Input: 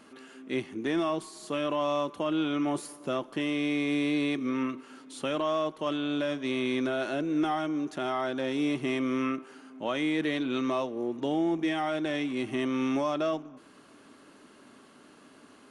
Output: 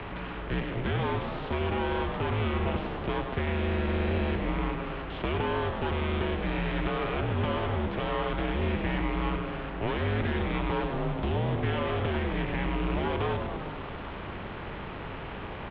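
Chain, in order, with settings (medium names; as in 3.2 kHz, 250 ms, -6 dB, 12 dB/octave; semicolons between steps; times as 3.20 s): spectral levelling over time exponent 0.6; half-wave rectifier; frequency-shifting echo 100 ms, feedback 62%, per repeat +120 Hz, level -8.5 dB; mistuned SSB -210 Hz 190–3500 Hz; three bands compressed up and down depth 40%; trim +2 dB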